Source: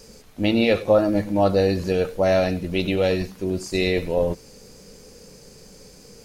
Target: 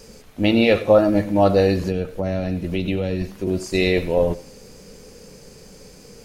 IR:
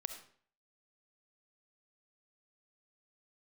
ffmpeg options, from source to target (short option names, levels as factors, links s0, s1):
-filter_complex "[0:a]asettb=1/sr,asplit=3[s0][s1][s2];[s0]atrim=end=1.834[s3];[s1]atrim=start=1.83:end=3.47,asetpts=PTS-STARTPTS,afade=t=in:d=0.004:c=qsin,afade=t=out:st=1.636:d=0.004:c=qsin,acrossover=split=280[s4][s5];[s5]acompressor=threshold=0.0355:ratio=10[s6];[s4][s6]amix=inputs=2:normalize=0[s7];[s2]atrim=start=3.466[s8];[s3][s7]acrossfade=d=0.004:c1=hsin:c2=qsin[s9];[s9][s8]acrossfade=d=0.004:c1=qsin:c2=hsin,asplit=2[s10][s11];[s11]highshelf=f=4600:t=q:w=1.5:g=-10.5[s12];[1:a]atrim=start_sample=2205[s13];[s12][s13]afir=irnorm=-1:irlink=0,volume=0.501[s14];[s10][s14]amix=inputs=2:normalize=0"